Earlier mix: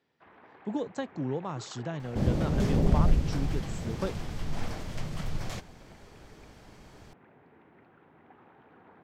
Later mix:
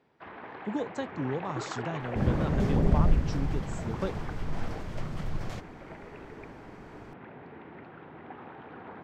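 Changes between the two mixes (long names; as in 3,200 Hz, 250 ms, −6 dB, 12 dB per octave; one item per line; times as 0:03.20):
first sound +9.5 dB
second sound: add high-shelf EQ 2,900 Hz −9 dB
reverb: on, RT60 0.85 s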